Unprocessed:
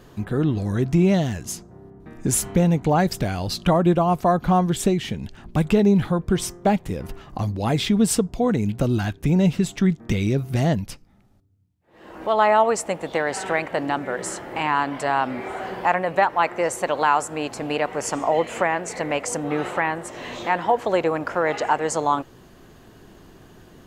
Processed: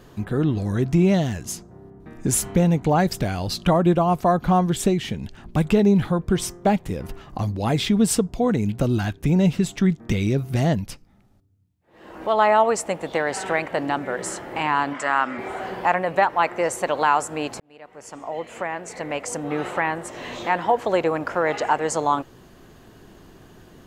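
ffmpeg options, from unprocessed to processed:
-filter_complex "[0:a]asplit=3[a][b][c];[a]afade=t=out:st=14.93:d=0.02[d];[b]highpass=240,equalizer=f=430:t=q:w=4:g=-6,equalizer=f=730:t=q:w=4:g=-6,equalizer=f=1.3k:t=q:w=4:g=8,equalizer=f=1.9k:t=q:w=4:g=5,equalizer=f=4.2k:t=q:w=4:g=-6,equalizer=f=7.2k:t=q:w=4:g=6,lowpass=f=8.9k:w=0.5412,lowpass=f=8.9k:w=1.3066,afade=t=in:st=14.93:d=0.02,afade=t=out:st=15.37:d=0.02[e];[c]afade=t=in:st=15.37:d=0.02[f];[d][e][f]amix=inputs=3:normalize=0,asplit=2[g][h];[g]atrim=end=17.6,asetpts=PTS-STARTPTS,afade=t=out:st=17.596:d=0.004:c=hsin[i];[h]atrim=start=17.6,asetpts=PTS-STARTPTS,afade=t=in:d=2.33[j];[i][j]concat=n=2:v=0:a=1"

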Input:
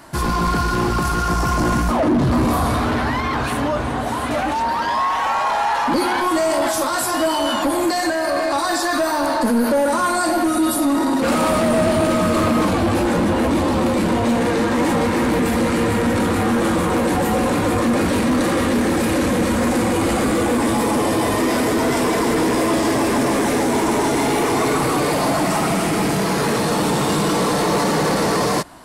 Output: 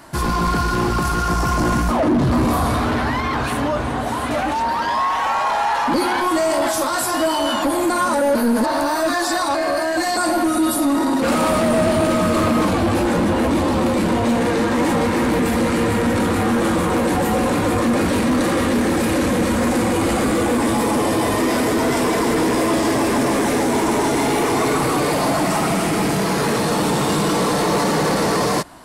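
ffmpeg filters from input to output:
-filter_complex "[0:a]asplit=3[a][b][c];[a]atrim=end=7.902[d];[b]atrim=start=7.898:end=10.172,asetpts=PTS-STARTPTS,areverse[e];[c]atrim=start=10.168[f];[d][e]acrossfade=d=0.004:c1=hsin:c2=hsin[g];[g][f]acrossfade=d=0.004:c1=hsin:c2=hsin"

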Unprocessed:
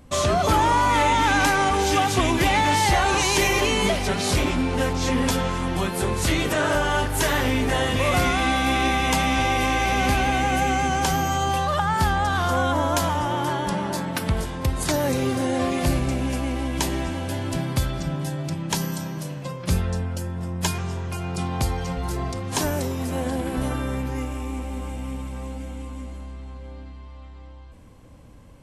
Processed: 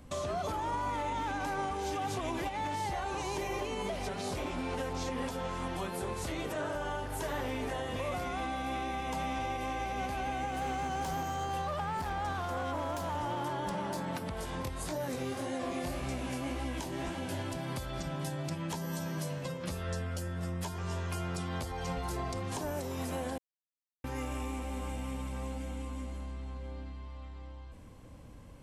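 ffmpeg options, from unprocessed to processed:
-filter_complex "[0:a]asplit=3[a][b][c];[a]afade=t=out:st=0.72:d=0.02[d];[b]acontrast=88,afade=t=in:st=0.72:d=0.02,afade=t=out:st=2.48:d=0.02[e];[c]afade=t=in:st=2.48:d=0.02[f];[d][e][f]amix=inputs=3:normalize=0,asettb=1/sr,asplit=3[g][h][i];[g]atrim=end=10.514[j];[h]atrim=start=10.51:end=14.07,asetpts=PTS-STARTPTS,afade=t=in:d=0.004:c=qsin,afade=t=out:st=3.556:d=0.004:c=qsin,asoftclip=type=hard:threshold=-20.5dB[k];[i]atrim=start=14.066[l];[j][k]acrossfade=d=0.004:c1=hsin:c2=qsin[m];[m][l]acrossfade=d=0.004:c1=qsin:c2=hsin,asplit=3[n][o][p];[n]afade=t=out:st=14.61:d=0.02[q];[o]flanger=delay=15.5:depth=7.9:speed=1.8,afade=t=in:st=14.61:d=0.02,afade=t=out:st=17.38:d=0.02[r];[p]afade=t=in:st=17.38:d=0.02[s];[q][r][s]amix=inputs=3:normalize=0,asettb=1/sr,asplit=3[t][u][v];[t]atrim=end=18.504[w];[u]atrim=start=18.5:end=21.72,asetpts=PTS-STARTPTS,afade=t=in:d=0.004:c=qsin,afade=t=out:st=3.216:d=0.004:c=qsin,asplit=2[x][y];[y]adelay=12,volume=-3dB[z];[x][z]amix=inputs=2:normalize=0,atrim=end_sample=142002[aa];[v]atrim=start=21.716[ab];[w][aa]acrossfade=d=0.004:c1=hsin:c2=qsin[ac];[ac][ab]acrossfade=d=0.004:c1=qsin:c2=hsin,asplit=3[ad][ae][af];[ad]atrim=end=23.38,asetpts=PTS-STARTPTS,afade=t=out:st=23.376:d=0.004:c=hsin[ag];[ae]atrim=start=23.38:end=24.04,asetpts=PTS-STARTPTS,volume=0[ah];[af]atrim=start=24.04,asetpts=PTS-STARTPTS,afade=t=in:d=0.004:c=hsin[ai];[ag][ah][ai]concat=n=3:v=0:a=1,acrossover=split=450|1000[aj][ak][al];[aj]acompressor=threshold=-32dB:ratio=4[am];[ak]acompressor=threshold=-28dB:ratio=4[an];[al]acompressor=threshold=-37dB:ratio=4[ao];[am][an][ao]amix=inputs=3:normalize=0,alimiter=limit=-23dB:level=0:latency=1:release=240,volume=-3.5dB"

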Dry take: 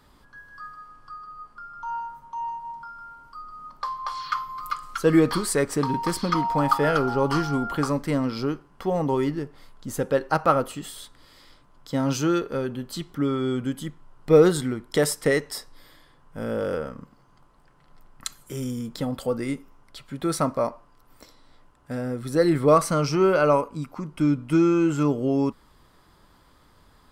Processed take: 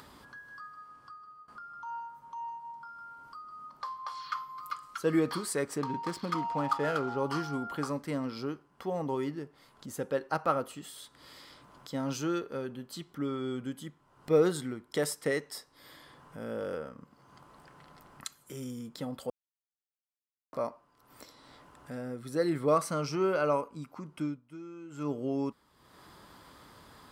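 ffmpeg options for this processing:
-filter_complex "[0:a]asettb=1/sr,asplit=3[a][b][c];[a]atrim=end=5.784[d];[b]atrim=start=5.78:end=7.17,asetpts=PTS-STARTPTS,afade=t=in:d=0.004:c=qsin,afade=t=out:st=1.386:d=0.004:c=qsin,adynamicsmooth=sensitivity=6.5:basefreq=2.6k[e];[c]atrim=start=7.166[f];[d][e]acrossfade=d=0.004:c1=hsin:c2=qsin[g];[g][f]acrossfade=d=0.004:c1=qsin:c2=hsin,asplit=6[h][i][j][k][l][m];[h]atrim=end=1.48,asetpts=PTS-STARTPTS,afade=t=out:st=0.69:d=0.79:silence=0.1[n];[i]atrim=start=1.48:end=19.3,asetpts=PTS-STARTPTS,afade=t=in:d=0.004:c=hsin:silence=0.1,afade=t=out:st=17.816:d=0.004:c=hsin[o];[j]atrim=start=19.3:end=20.53,asetpts=PTS-STARTPTS,volume=0[p];[k]atrim=start=20.53:end=24.41,asetpts=PTS-STARTPTS,afade=t=in:d=0.004:c=hsin,afade=t=out:st=3.65:d=0.23:silence=0.133352[q];[l]atrim=start=24.41:end=24.9,asetpts=PTS-STARTPTS,volume=-17.5dB[r];[m]atrim=start=24.9,asetpts=PTS-STARTPTS,afade=t=in:d=0.23:silence=0.133352[s];[n][o][p][q][r][s]concat=n=6:v=0:a=1,highpass=57,lowshelf=f=100:g=-8,acompressor=mode=upward:threshold=-33dB:ratio=2.5,volume=-8.5dB"

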